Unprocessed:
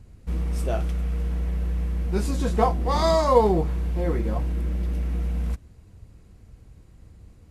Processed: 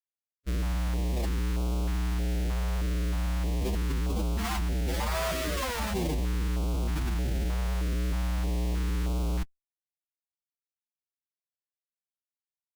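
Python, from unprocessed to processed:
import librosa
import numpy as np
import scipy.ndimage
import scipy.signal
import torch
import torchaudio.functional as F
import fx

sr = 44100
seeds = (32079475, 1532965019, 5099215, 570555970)

y = fx.schmitt(x, sr, flips_db=-26.0)
y = fx.stretch_vocoder(y, sr, factor=1.7)
y = fx.filter_held_notch(y, sr, hz=3.2, low_hz=310.0, high_hz=1800.0)
y = F.gain(torch.from_numpy(y), -3.0).numpy()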